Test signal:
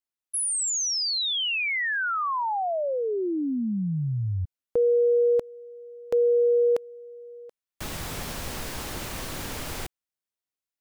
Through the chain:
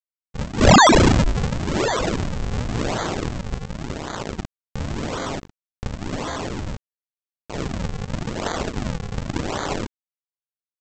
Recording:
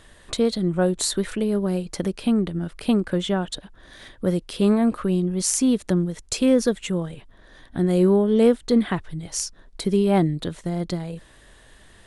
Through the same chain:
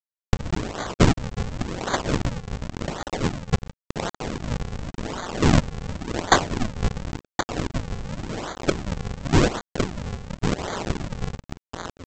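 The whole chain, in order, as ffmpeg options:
ffmpeg -i in.wav -filter_complex "[0:a]asplit=2[link_01][link_02];[link_02]aecho=0:1:1072|2144|3216|4288:0.316|0.104|0.0344|0.0114[link_03];[link_01][link_03]amix=inputs=2:normalize=0,acrusher=bits=4:mix=0:aa=0.000001,acompressor=threshold=-24dB:ratio=4:attack=29:release=265:knee=1:detection=peak,highpass=frequency=1400:width_type=q:width=1.5,aderivative,acompressor=mode=upward:threshold=-34dB:ratio=4:attack=3.1:release=344:knee=2.83:detection=peak,aexciter=amount=2.8:drive=8.7:freq=3600,aresample=16000,acrusher=samples=29:mix=1:aa=0.000001:lfo=1:lforange=46.4:lforate=0.91,aresample=44100,volume=4.5dB" out.wav

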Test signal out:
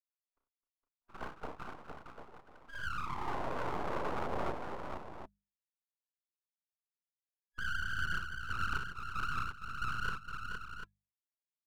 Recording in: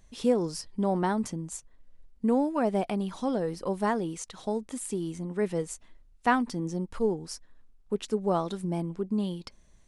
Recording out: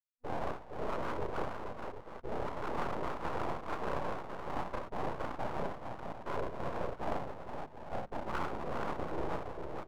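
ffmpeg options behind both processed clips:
ffmpeg -i in.wav -filter_complex "[0:a]acrusher=bits=4:mix=0:aa=0.000001,afftfilt=real='hypot(re,im)*cos(2*PI*random(0))':imag='hypot(re,im)*sin(2*PI*random(1))':win_size=512:overlap=0.75,afftfilt=real='re*between(b*sr/4096,120,830)':imag='im*between(b*sr/4096,120,830)':win_size=4096:overlap=0.75,asplit=2[link_01][link_02];[link_02]adelay=33,volume=-5dB[link_03];[link_01][link_03]amix=inputs=2:normalize=0,afftdn=noise_reduction=16:noise_floor=-49,areverse,acompressor=threshold=-45dB:ratio=10,areverse,bandreject=frequency=510:width=12,aecho=1:1:47|62|260|462|645|744:0.299|0.422|0.178|0.562|0.126|0.335,aeval=exprs='abs(val(0))':channel_layout=same,lowshelf=frequency=350:gain=-5.5,bandreject=frequency=50:width_type=h:width=6,bandreject=frequency=100:width_type=h:width=6,bandreject=frequency=150:width_type=h:width=6,bandreject=frequency=200:width_type=h:width=6,volume=15.5dB" out.wav

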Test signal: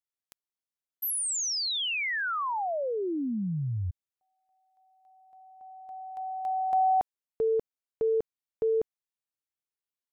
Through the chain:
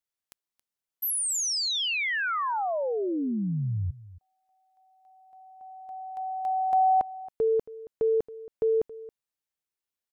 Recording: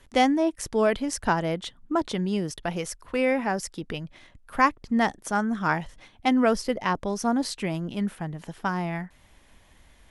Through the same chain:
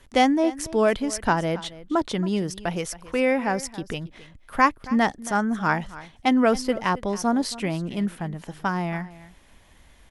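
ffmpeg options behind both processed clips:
ffmpeg -i in.wav -af "aecho=1:1:274:0.126,volume=2dB" out.wav

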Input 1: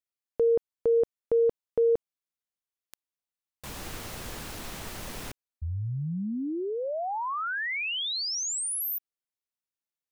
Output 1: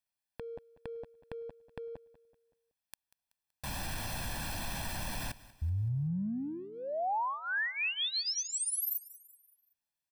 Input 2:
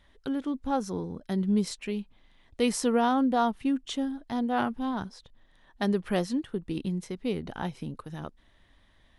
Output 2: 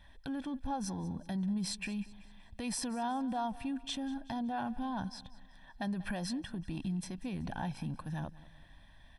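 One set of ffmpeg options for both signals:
ffmpeg -i in.wav -af "acompressor=threshold=-35dB:ratio=4:attack=0.95:release=46:knee=1:detection=peak,bandreject=frequency=6800:width=8.6,aecho=1:1:1.2:0.74,aecho=1:1:189|378|567|756:0.112|0.0505|0.0227|0.0102" out.wav

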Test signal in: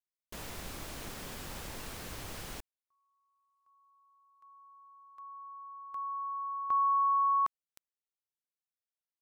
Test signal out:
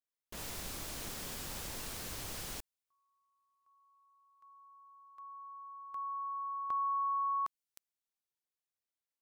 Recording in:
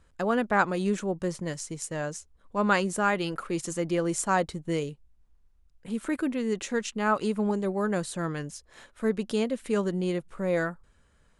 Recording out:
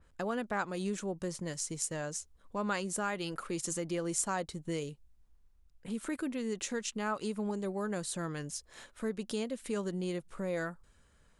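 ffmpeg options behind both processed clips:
ffmpeg -i in.wav -af "acompressor=threshold=-33dB:ratio=2:attack=6.5:release=307:detection=rms,adynamicequalizer=threshold=0.00224:dfrequency=3400:dqfactor=0.7:tfrequency=3400:tqfactor=0.7:attack=5:release=100:ratio=0.417:range=3:mode=boostabove:tftype=highshelf,volume=-2dB" out.wav

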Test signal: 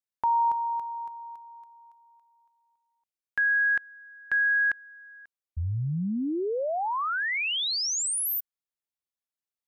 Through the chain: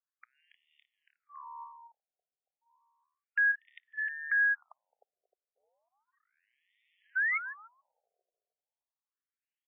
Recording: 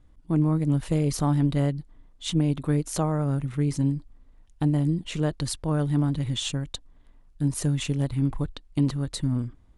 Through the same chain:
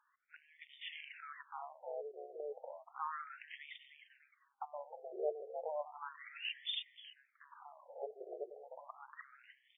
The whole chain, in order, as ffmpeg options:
ffmpeg -i in.wav -filter_complex "[0:a]aphaser=in_gain=1:out_gain=1:delay=3.1:decay=0.23:speed=0.42:type=sinusoidal,lowpass=frequency=4500:width_type=q:width=6.3,asplit=4[link_01][link_02][link_03][link_04];[link_02]adelay=307,afreqshift=75,volume=-11.5dB[link_05];[link_03]adelay=614,afreqshift=150,volume=-21.4dB[link_06];[link_04]adelay=921,afreqshift=225,volume=-31.3dB[link_07];[link_01][link_05][link_06][link_07]amix=inputs=4:normalize=0,acompressor=threshold=-25dB:ratio=2.5:attack=0.39:release=29:knee=6:detection=rms,afftfilt=real='re*between(b*sr/1024,520*pow(2600/520,0.5+0.5*sin(2*PI*0.33*pts/sr))/1.41,520*pow(2600/520,0.5+0.5*sin(2*PI*0.33*pts/sr))*1.41)':imag='im*between(b*sr/1024,520*pow(2600/520,0.5+0.5*sin(2*PI*0.33*pts/sr))/1.41,520*pow(2600/520,0.5+0.5*sin(2*PI*0.33*pts/sr))*1.41)':win_size=1024:overlap=0.75" out.wav

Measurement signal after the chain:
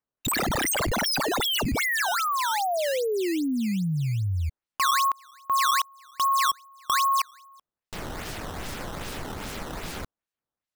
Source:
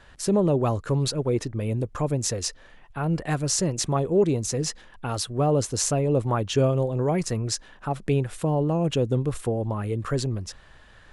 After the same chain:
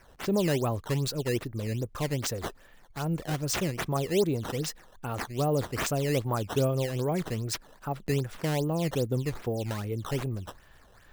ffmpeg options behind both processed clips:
ffmpeg -i in.wav -af "acrusher=samples=11:mix=1:aa=0.000001:lfo=1:lforange=17.6:lforate=2.5,volume=-5dB" out.wav

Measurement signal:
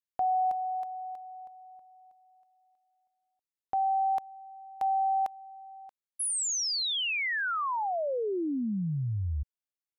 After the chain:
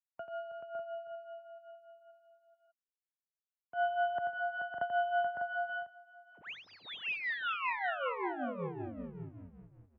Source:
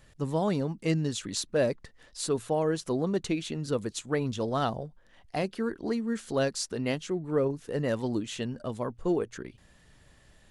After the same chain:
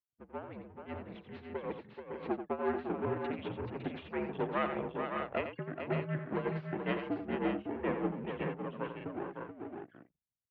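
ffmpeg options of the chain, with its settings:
ffmpeg -i in.wav -af "afftfilt=real='re*gte(hypot(re,im),0.0126)':imag='im*gte(hypot(re,im),0.0126)':win_size=1024:overlap=0.75,dynaudnorm=framelen=190:gausssize=21:maxgain=10.5dB,aresample=16000,aeval=exprs='max(val(0),0)':channel_layout=same,aresample=44100,tremolo=f=5.2:d=0.84,aecho=1:1:87|431|557|599:0.376|0.447|0.473|0.422,highpass=frequency=190:width_type=q:width=0.5412,highpass=frequency=190:width_type=q:width=1.307,lowpass=frequency=2900:width_type=q:width=0.5176,lowpass=frequency=2900:width_type=q:width=0.7071,lowpass=frequency=2900:width_type=q:width=1.932,afreqshift=-73,volume=-7dB" out.wav

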